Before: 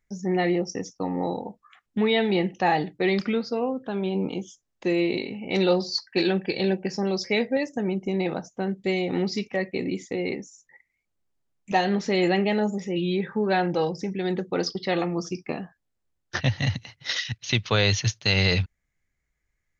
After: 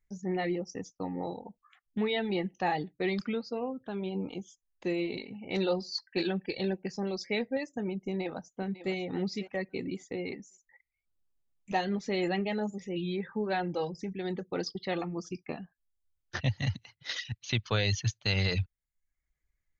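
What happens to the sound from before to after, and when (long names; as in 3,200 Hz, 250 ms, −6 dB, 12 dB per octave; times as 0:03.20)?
0:08.02–0:08.92: delay throw 550 ms, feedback 25%, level −12 dB
whole clip: notch filter 5,500 Hz, Q 16; reverb reduction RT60 0.57 s; low-shelf EQ 71 Hz +9.5 dB; level −7.5 dB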